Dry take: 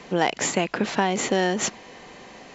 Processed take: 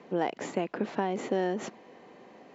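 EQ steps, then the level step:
resonant band-pass 300 Hz, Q 0.74
spectral tilt +2 dB per octave
−1.5 dB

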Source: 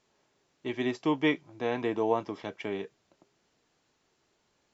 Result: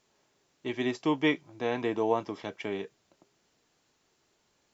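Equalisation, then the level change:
high-shelf EQ 5,400 Hz +5.5 dB
0.0 dB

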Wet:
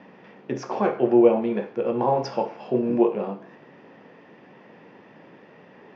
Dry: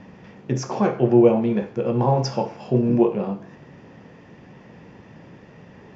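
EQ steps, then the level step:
band-pass filter 280–4,200 Hz
high-frequency loss of the air 50 metres
0.0 dB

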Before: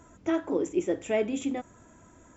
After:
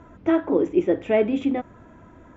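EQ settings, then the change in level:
high-frequency loss of the air 290 metres
+8.0 dB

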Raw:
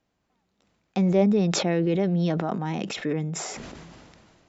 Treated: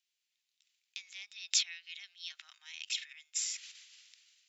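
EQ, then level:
inverse Chebyshev high-pass filter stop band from 440 Hz, stop band 80 dB
0.0 dB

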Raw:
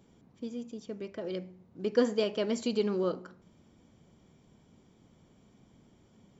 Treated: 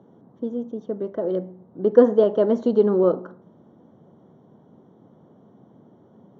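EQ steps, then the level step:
moving average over 18 samples
high-pass filter 110 Hz 24 dB per octave
parametric band 620 Hz +7 dB 2.4 octaves
+7.0 dB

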